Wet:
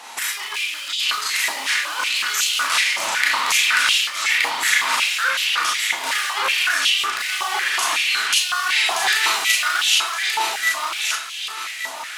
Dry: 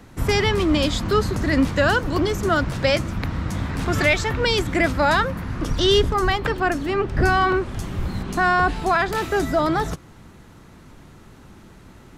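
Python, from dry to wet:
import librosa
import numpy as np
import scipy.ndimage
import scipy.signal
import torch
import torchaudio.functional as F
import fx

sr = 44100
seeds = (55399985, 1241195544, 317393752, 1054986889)

p1 = (np.mod(10.0 ** (15.0 / 20.0) * x + 1.0, 2.0) - 1.0) / 10.0 ** (15.0 / 20.0)
p2 = x + (p1 * 10.0 ** (-7.0 / 20.0))
p3 = fx.band_shelf(p2, sr, hz=5200.0, db=11.5, octaves=2.7)
p4 = fx.over_compress(p3, sr, threshold_db=-21.0, ratio=-0.5)
p5 = p4 + fx.echo_feedback(p4, sr, ms=1172, feedback_pct=37, wet_db=-3.5, dry=0)
p6 = fx.rev_schroeder(p5, sr, rt60_s=0.31, comb_ms=26, drr_db=-2.0)
p7 = fx.filter_held_highpass(p6, sr, hz=5.4, low_hz=870.0, high_hz=2900.0)
y = p7 * 10.0 ** (-4.0 / 20.0)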